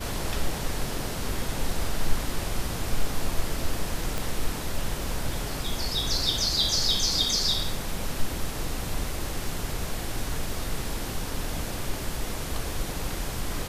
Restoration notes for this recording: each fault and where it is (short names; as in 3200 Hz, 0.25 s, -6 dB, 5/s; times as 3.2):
4.18 pop